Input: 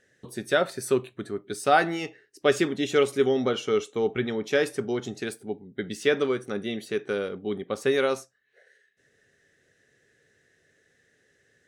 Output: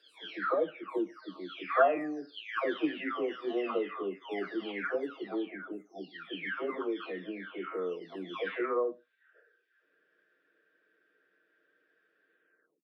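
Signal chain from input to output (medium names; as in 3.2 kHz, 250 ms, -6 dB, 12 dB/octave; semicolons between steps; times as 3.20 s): delay that grows with frequency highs early, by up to 740 ms; Bessel high-pass 410 Hz, order 8; peaking EQ 8.2 kHz -12.5 dB 0.65 oct; tape speed -9%; short-mantissa float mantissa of 6-bit; distance through air 350 m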